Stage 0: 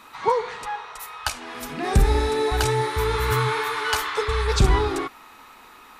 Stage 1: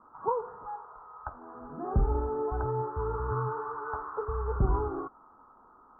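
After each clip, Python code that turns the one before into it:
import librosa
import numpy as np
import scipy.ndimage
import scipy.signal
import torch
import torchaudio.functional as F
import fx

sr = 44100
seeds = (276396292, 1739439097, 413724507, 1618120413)

y = scipy.signal.sosfilt(scipy.signal.butter(12, 1400.0, 'lowpass', fs=sr, output='sos'), x)
y = F.gain(torch.from_numpy(y), -8.5).numpy()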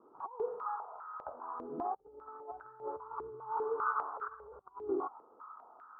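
y = fx.over_compress(x, sr, threshold_db=-36.0, ratio=-0.5)
y = fx.filter_held_bandpass(y, sr, hz=5.0, low_hz=390.0, high_hz=1500.0)
y = F.gain(torch.from_numpy(y), 4.0).numpy()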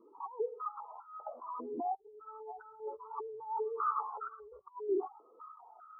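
y = fx.spec_expand(x, sr, power=2.2)
y = fx.notch_cascade(y, sr, direction='falling', hz=1.3)
y = F.gain(torch.from_numpy(y), 3.0).numpy()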